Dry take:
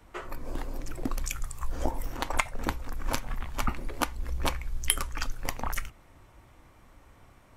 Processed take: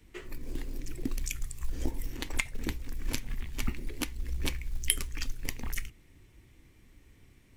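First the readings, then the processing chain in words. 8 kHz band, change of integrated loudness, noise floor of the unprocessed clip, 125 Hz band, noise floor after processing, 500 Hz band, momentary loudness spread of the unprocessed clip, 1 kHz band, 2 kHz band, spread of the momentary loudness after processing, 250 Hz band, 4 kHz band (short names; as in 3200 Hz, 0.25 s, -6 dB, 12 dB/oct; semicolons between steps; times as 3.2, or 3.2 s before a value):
-1.5 dB, -3.0 dB, -57 dBFS, -1.5 dB, -59 dBFS, -7.5 dB, 10 LU, -15.5 dB, -3.5 dB, 11 LU, -1.5 dB, -1.5 dB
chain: band shelf 890 Hz -14 dB; short-mantissa float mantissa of 4-bit; gain -1.5 dB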